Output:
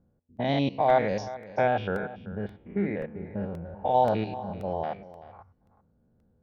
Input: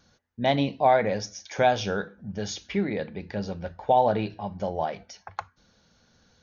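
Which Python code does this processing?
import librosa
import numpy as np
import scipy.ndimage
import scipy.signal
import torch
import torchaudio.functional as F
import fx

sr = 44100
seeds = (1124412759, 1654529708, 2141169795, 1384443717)

y = fx.spec_steps(x, sr, hold_ms=100)
y = fx.lowpass(y, sr, hz=2700.0, slope=24, at=(1.34, 3.66))
y = fx.env_lowpass(y, sr, base_hz=440.0, full_db=-21.0)
y = y + 10.0 ** (-16.5 / 20.0) * np.pad(y, (int(383 * sr / 1000.0), 0))[:len(y)]
y = fx.buffer_crackle(y, sr, first_s=0.37, period_s=0.53, block=64, kind='repeat')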